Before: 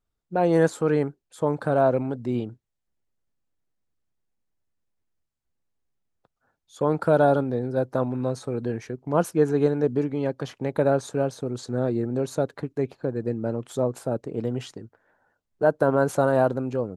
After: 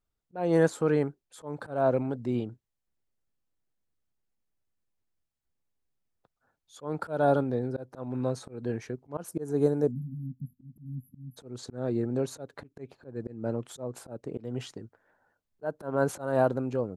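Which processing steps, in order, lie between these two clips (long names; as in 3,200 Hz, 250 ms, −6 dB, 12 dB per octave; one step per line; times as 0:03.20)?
0:09.92–0:11.37: time-frequency box erased 260–11,000 Hz
volume swells 224 ms
0:09.28–0:10.26: drawn EQ curve 650 Hz 0 dB, 2,800 Hz −11 dB, 9,400 Hz +10 dB
level −3 dB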